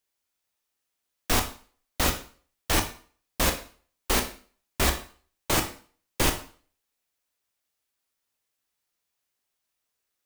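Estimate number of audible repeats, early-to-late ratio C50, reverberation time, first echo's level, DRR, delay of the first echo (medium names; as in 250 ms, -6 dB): no echo, 10.5 dB, 0.45 s, no echo, 4.5 dB, no echo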